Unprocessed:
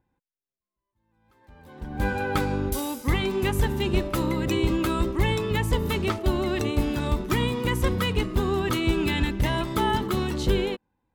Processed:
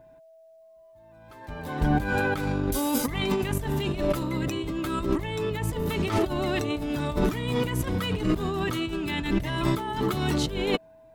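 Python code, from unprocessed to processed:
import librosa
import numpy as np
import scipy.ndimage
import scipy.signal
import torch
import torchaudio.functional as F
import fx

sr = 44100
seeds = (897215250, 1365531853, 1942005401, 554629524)

y = x + 0.4 * np.pad(x, (int(6.8 * sr / 1000.0), 0))[:len(x)]
y = fx.over_compress(y, sr, threshold_db=-33.0, ratio=-1.0)
y = y + 10.0 ** (-56.0 / 20.0) * np.sin(2.0 * np.pi * 650.0 * np.arange(len(y)) / sr)
y = y * librosa.db_to_amplitude(5.5)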